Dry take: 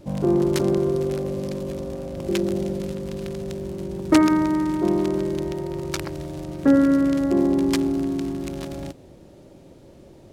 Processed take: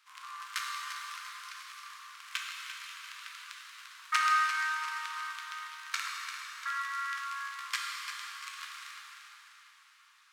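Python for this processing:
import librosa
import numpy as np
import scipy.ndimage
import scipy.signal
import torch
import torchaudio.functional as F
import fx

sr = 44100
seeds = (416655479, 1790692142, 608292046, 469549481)

y = scipy.signal.sosfilt(scipy.signal.butter(12, 1100.0, 'highpass', fs=sr, output='sos'), x)
y = fx.high_shelf(y, sr, hz=3800.0, db=-11.0)
y = fx.echo_feedback(y, sr, ms=345, feedback_pct=47, wet_db=-10)
y = fx.rev_plate(y, sr, seeds[0], rt60_s=3.3, hf_ratio=0.85, predelay_ms=0, drr_db=-2.0)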